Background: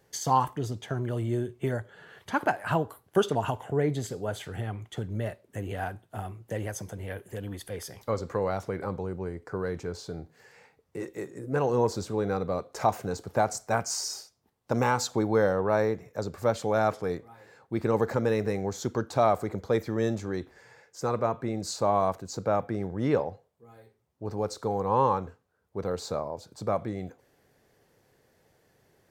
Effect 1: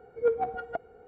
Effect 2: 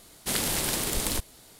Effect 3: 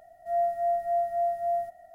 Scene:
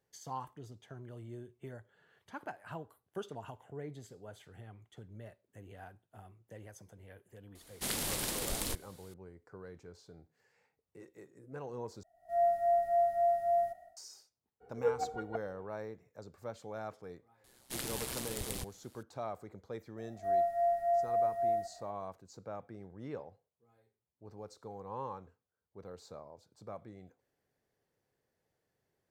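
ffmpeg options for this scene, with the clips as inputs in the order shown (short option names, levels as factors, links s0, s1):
-filter_complex "[2:a]asplit=2[s0][s1];[3:a]asplit=2[s2][s3];[0:a]volume=0.133[s4];[s2]dynaudnorm=f=100:g=5:m=6.31[s5];[s1]aeval=exprs='val(0)*sin(2*PI*63*n/s)':c=same[s6];[s4]asplit=2[s7][s8];[s7]atrim=end=12.034[s9];[s5]atrim=end=1.94,asetpts=PTS-STARTPTS,volume=0.133[s10];[s8]atrim=start=13.966[s11];[s0]atrim=end=1.59,asetpts=PTS-STARTPTS,volume=0.398,afade=t=in:d=0.004:c=hsin,afade=t=out:st=1.586:d=0.004:c=hsin,adelay=7550[s12];[1:a]atrim=end=1.07,asetpts=PTS-STARTPTS,volume=0.473,afade=t=in:d=0.02,afade=t=out:st=1.05:d=0.02,adelay=643860S[s13];[s6]atrim=end=1.59,asetpts=PTS-STARTPTS,volume=0.335,afade=t=in:d=0.004:c=hsin,afade=t=out:st=1.586:d=0.004:c=hsin,adelay=17440[s14];[s3]atrim=end=1.94,asetpts=PTS-STARTPTS,volume=0.668,afade=t=in:d=0.004:c=hsin,afade=t=out:st=1.936:d=0.004:c=hsin,adelay=19970[s15];[s9][s10]acrossfade=d=0.004:c1=hsin:c2=hsin[s16];[s16][s11]acrossfade=d=0.004:c1=hsin:c2=hsin[s17];[s17][s12][s13][s14][s15]amix=inputs=5:normalize=0"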